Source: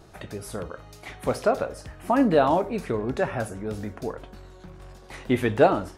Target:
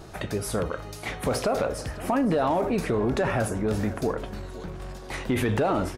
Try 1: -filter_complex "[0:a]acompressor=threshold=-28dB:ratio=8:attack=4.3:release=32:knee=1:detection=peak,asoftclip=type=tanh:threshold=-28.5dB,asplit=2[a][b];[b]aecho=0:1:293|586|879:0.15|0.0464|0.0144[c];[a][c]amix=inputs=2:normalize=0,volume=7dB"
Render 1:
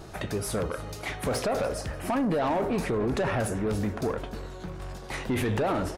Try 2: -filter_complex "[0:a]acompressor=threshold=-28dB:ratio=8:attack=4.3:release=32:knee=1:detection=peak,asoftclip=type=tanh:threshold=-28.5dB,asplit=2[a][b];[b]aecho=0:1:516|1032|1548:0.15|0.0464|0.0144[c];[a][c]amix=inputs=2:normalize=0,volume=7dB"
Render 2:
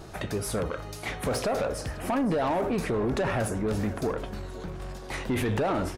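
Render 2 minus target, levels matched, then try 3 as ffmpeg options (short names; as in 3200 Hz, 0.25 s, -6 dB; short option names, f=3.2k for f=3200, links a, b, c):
soft clip: distortion +11 dB
-filter_complex "[0:a]acompressor=threshold=-28dB:ratio=8:attack=4.3:release=32:knee=1:detection=peak,asoftclip=type=tanh:threshold=-20dB,asplit=2[a][b];[b]aecho=0:1:516|1032|1548:0.15|0.0464|0.0144[c];[a][c]amix=inputs=2:normalize=0,volume=7dB"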